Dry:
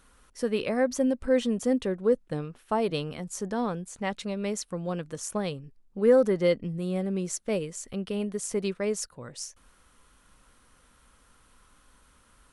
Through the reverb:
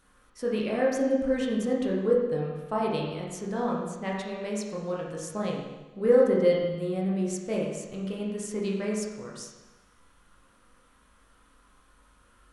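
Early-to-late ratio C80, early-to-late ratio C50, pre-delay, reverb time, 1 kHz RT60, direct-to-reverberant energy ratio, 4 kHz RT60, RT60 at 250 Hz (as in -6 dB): 3.5 dB, 1.5 dB, 19 ms, 1.1 s, 1.1 s, -3.5 dB, 1.1 s, 1.1 s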